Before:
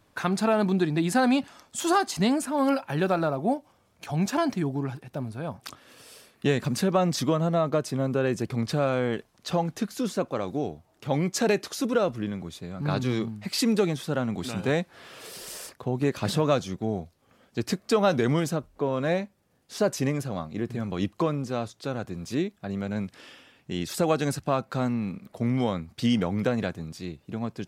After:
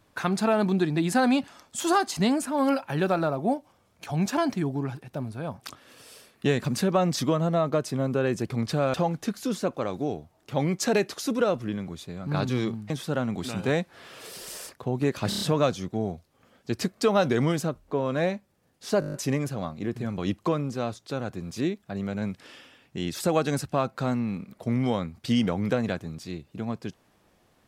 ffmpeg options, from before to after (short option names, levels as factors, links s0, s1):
-filter_complex "[0:a]asplit=14[s0][s1][s2][s3][s4][s5][s6][s7][s8][s9][s10][s11][s12][s13];[s0]atrim=end=8.942[s14];[s1]atrim=start=9.478:end=13.442[s15];[s2]atrim=start=13.898:end=16.322[s16];[s3]atrim=start=16.288:end=16.322[s17];[s4]atrim=start=16.288:end=16.322[s18];[s5]atrim=start=16.288:end=16.322[s19];[s6]atrim=start=16.288:end=19.902[s20];[s7]atrim=start=19.878:end=19.902[s21];[s8]atrim=start=19.878:end=19.902[s22];[s9]atrim=start=19.878:end=19.902[s23];[s10]atrim=start=19.878:end=19.902[s24];[s11]atrim=start=19.878:end=19.902[s25];[s12]atrim=start=19.878:end=19.902[s26];[s13]atrim=start=19.878[s27];[s14][s15]acrossfade=d=0.004:c1=hsin:c2=hsin[s28];[s28][s16]acrossfade=d=0.004:c1=hsin:c2=hsin[s29];[s29][s17]acrossfade=d=0.004:c1=hsin:c2=hsin[s30];[s30][s18]acrossfade=d=0.004:c1=hsin:c2=hsin[s31];[s31][s19]acrossfade=d=0.004:c1=hsin:c2=hsin[s32];[s32][s20]acrossfade=d=0.004:c1=hsin:c2=hsin[s33];[s33][s21]acrossfade=d=0.004:c1=hsin:c2=hsin[s34];[s34][s22]acrossfade=d=0.004:c1=hsin:c2=hsin[s35];[s35][s23]acrossfade=d=0.004:c1=hsin:c2=hsin[s36];[s36][s24]acrossfade=d=0.004:c1=hsin:c2=hsin[s37];[s37][s25]acrossfade=d=0.004:c1=hsin:c2=hsin[s38];[s38][s26]acrossfade=d=0.004:c1=hsin:c2=hsin[s39];[s39][s27]acrossfade=d=0.004:c1=hsin:c2=hsin"